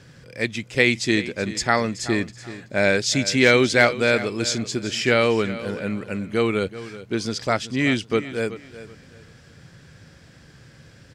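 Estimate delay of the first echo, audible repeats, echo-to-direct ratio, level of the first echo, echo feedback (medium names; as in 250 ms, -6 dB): 378 ms, 2, -14.5 dB, -15.0 dB, 26%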